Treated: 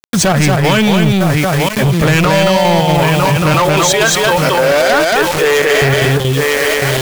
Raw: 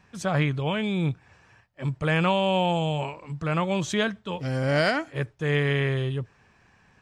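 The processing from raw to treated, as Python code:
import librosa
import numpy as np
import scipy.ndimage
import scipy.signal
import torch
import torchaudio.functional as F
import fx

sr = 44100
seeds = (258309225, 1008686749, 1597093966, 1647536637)

y = np.minimum(x, 2.0 * 10.0 ** (-19.0 / 20.0) - x)
y = fx.dereverb_blind(y, sr, rt60_s=1.5)
y = fx.highpass(y, sr, hz=360.0, slope=24, at=(3.54, 5.82))
y = fx.echo_feedback(y, sr, ms=953, feedback_pct=33, wet_db=-14.5)
y = fx.quant_dither(y, sr, seeds[0], bits=8, dither='none')
y = fx.step_gate(y, sr, bpm=187, pattern='.xxx.xx.xxxxxx', floor_db=-12.0, edge_ms=4.5)
y = fx.leveller(y, sr, passes=5)
y = y + 10.0 ** (-3.5 / 20.0) * np.pad(y, (int(228 * sr / 1000.0), 0))[:len(y)]
y = fx.env_flatten(y, sr, amount_pct=70)
y = y * librosa.db_to_amplitude(1.5)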